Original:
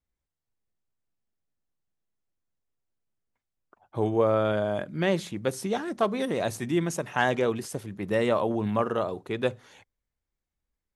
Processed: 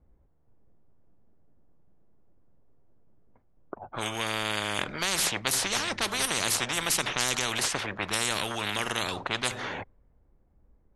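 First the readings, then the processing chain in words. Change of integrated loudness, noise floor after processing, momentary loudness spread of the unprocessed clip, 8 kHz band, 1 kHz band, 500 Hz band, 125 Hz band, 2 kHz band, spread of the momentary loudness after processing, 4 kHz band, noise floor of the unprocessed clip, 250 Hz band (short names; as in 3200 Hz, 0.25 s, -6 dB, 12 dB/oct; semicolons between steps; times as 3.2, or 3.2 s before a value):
-0.5 dB, -65 dBFS, 7 LU, +14.0 dB, -1.5 dB, -10.5 dB, -7.0 dB, +4.5 dB, 9 LU, +12.5 dB, under -85 dBFS, -9.0 dB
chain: low-pass opened by the level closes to 690 Hz, open at -23 dBFS; spectral compressor 10:1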